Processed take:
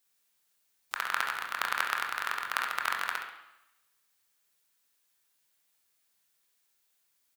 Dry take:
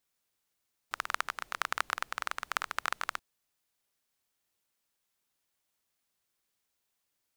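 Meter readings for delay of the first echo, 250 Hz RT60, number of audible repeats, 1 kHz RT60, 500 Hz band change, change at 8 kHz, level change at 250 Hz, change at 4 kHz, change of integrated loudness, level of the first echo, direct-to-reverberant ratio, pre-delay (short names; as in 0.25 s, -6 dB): 68 ms, 0.85 s, 1, 0.90 s, +0.5 dB, +1.0 dB, 0.0 dB, +3.0 dB, +3.5 dB, -8.5 dB, 0.5 dB, 23 ms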